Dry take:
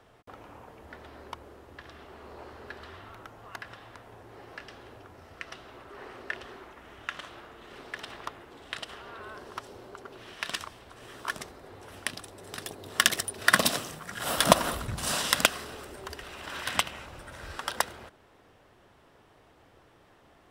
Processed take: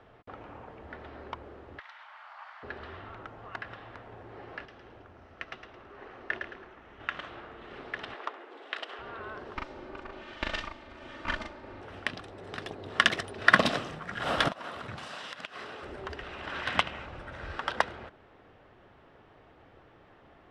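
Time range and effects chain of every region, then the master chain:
0:01.79–0:02.63: high-pass filter 640 Hz 24 dB per octave + frequency shifter +220 Hz
0:04.65–0:07.00: parametric band 6,100 Hz +4.5 dB 0.26 octaves + noise gate −44 dBFS, range −6 dB + echo with shifted repeats 109 ms, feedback 33%, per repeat −31 Hz, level −6.5 dB
0:08.14–0:08.99: high-pass filter 320 Hz 24 dB per octave + flutter between parallel walls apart 11.6 metres, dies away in 0.21 s
0:09.55–0:11.81: lower of the sound and its delayed copy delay 3.3 ms + low-pass filter 9,100 Hz + double-tracking delay 40 ms −2.5 dB
0:14.48–0:15.83: high-pass filter 88 Hz 24 dB per octave + low-shelf EQ 350 Hz −10.5 dB + downward compressor 10 to 1, threshold −36 dBFS
whole clip: low-pass filter 2,900 Hz 12 dB per octave; notch filter 1,000 Hz, Q 23; level +2.5 dB

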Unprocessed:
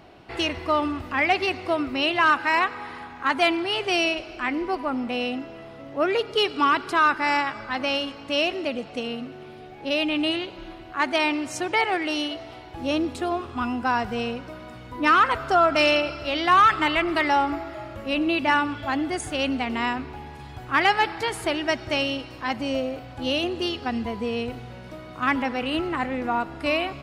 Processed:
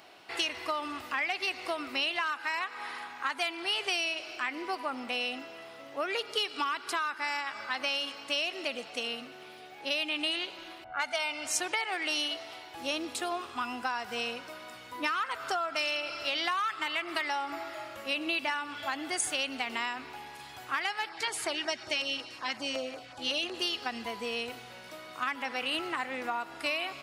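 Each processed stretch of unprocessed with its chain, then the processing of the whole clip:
0:10.84–0:11.47: low-pass that shuts in the quiet parts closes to 930 Hz, open at −20 dBFS + low-shelf EQ 83 Hz +11.5 dB + comb filter 1.4 ms, depth 81%
0:21.09–0:23.54: low-pass filter 8,600 Hz + auto-filter notch saw down 5.4 Hz 370–4,000 Hz
whole clip: high-pass filter 1,100 Hz 6 dB per octave; downward compressor 10 to 1, threshold −29 dBFS; high-shelf EQ 4,900 Hz +8 dB

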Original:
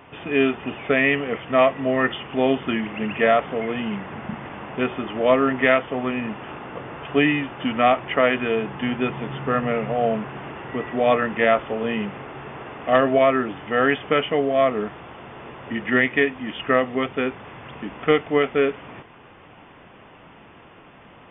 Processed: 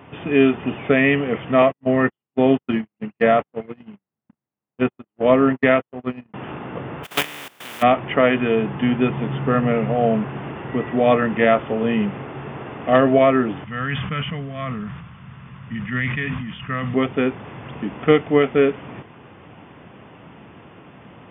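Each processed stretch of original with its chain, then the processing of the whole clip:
0:01.62–0:06.34: high-frequency loss of the air 140 metres + noise gate −24 dBFS, range −59 dB
0:07.03–0:07.81: compressing power law on the bin magnitudes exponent 0.23 + high-pass filter 550 Hz 6 dB per octave + output level in coarse steps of 18 dB
0:13.64–0:16.94: drawn EQ curve 180 Hz 0 dB, 330 Hz −21 dB, 800 Hz −16 dB, 1,100 Hz −6 dB + level that may fall only so fast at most 45 dB per second
whole clip: high-pass filter 96 Hz; low-shelf EQ 300 Hz +10.5 dB

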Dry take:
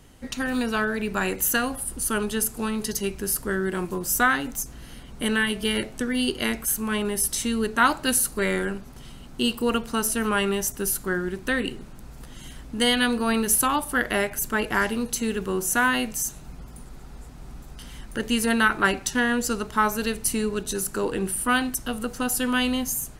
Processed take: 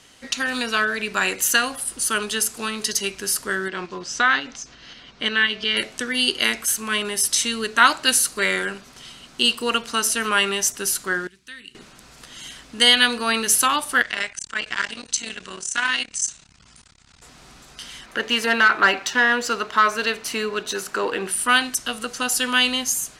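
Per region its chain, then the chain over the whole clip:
0:03.68–0:05.77: low-pass filter 5,500 Hz 24 dB per octave + shaped tremolo saw up 5.6 Hz, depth 40%
0:11.27–0:11.75: high-pass filter 42 Hz + guitar amp tone stack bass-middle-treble 6-0-2
0:14.02–0:17.22: Butterworth low-pass 9,300 Hz 72 dB per octave + parametric band 450 Hz −10 dB 2.5 octaves + saturating transformer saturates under 970 Hz
0:18.06–0:21.31: mid-hump overdrive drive 14 dB, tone 1,100 Hz, clips at −7 dBFS + bad sample-rate conversion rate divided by 2×, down none, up hold
whole clip: low-pass filter 5,300 Hz 12 dB per octave; spectral tilt +4 dB per octave; notch filter 850 Hz, Q 13; level +3.5 dB

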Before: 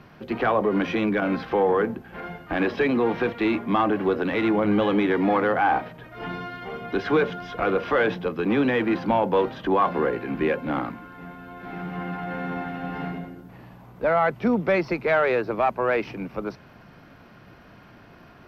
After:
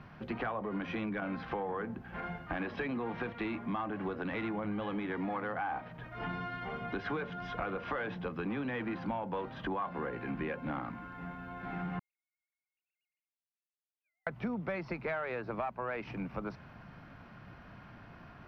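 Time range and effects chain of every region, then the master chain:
0:11.99–0:14.27: three sine waves on the formant tracks + inverse Chebyshev high-pass filter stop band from 1,400 Hz, stop band 70 dB
whole clip: low-pass filter 1,800 Hz 6 dB per octave; parametric band 400 Hz −8.5 dB 1.4 octaves; downward compressor 5 to 1, threshold −34 dBFS

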